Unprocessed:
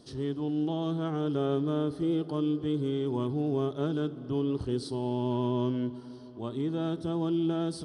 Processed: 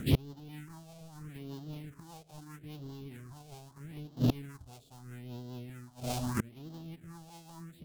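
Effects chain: half-waves squared off; phaser stages 4, 0.78 Hz, lowest notch 300–2400 Hz; flipped gate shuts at -30 dBFS, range -33 dB; formant shift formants -3 st; rotary speaker horn 5 Hz; gain +15 dB

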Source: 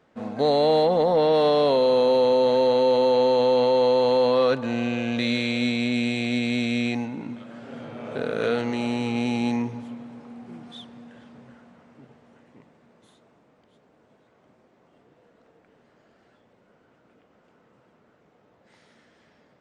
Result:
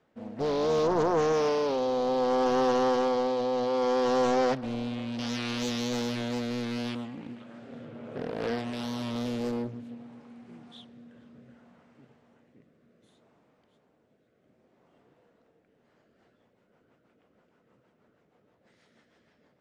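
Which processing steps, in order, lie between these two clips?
rotary speaker horn 0.65 Hz, later 6.3 Hz, at 15.59; Doppler distortion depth 0.98 ms; gain -4.5 dB

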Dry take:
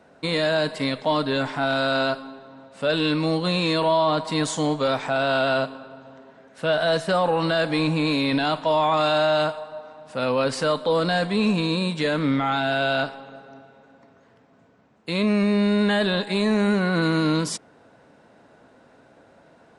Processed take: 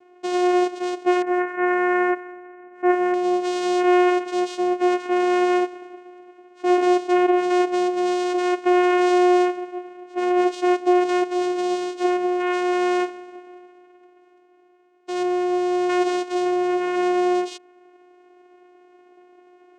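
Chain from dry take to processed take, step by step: vocoder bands 4, saw 359 Hz; 1.22–3.14 resonant high shelf 2700 Hz -13.5 dB, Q 3; gain +2.5 dB

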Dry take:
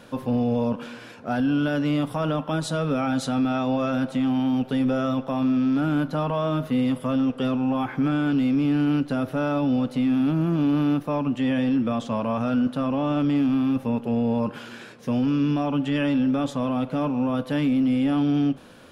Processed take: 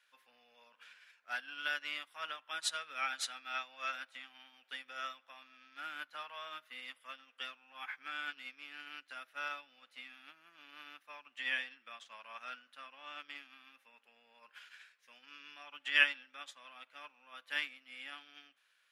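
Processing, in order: resonant high-pass 1900 Hz, resonance Q 1.9; upward expander 2.5:1, over -44 dBFS; gain +4.5 dB

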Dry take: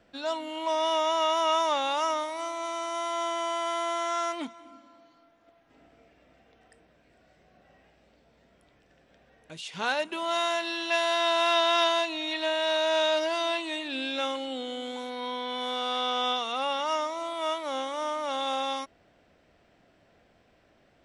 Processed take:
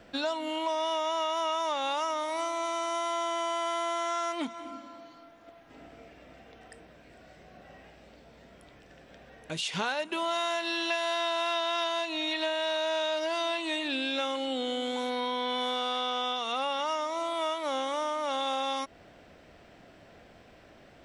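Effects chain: compressor, threshold -37 dBFS, peak gain reduction 15.5 dB; gain +8.5 dB

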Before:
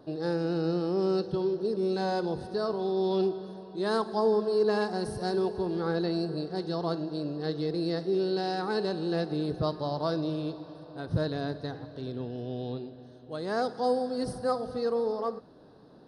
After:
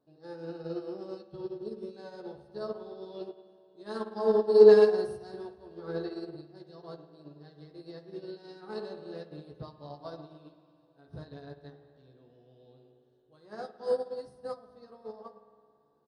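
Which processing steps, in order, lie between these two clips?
doubler 14 ms -3 dB; spring tank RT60 2.3 s, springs 54 ms, chirp 70 ms, DRR 3.5 dB; upward expander 2.5:1, over -31 dBFS; gain +2 dB

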